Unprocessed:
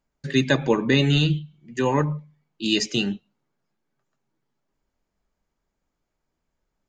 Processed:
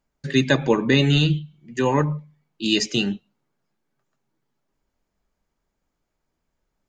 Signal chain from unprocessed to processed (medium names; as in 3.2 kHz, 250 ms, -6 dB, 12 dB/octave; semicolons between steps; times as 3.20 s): trim +1.5 dB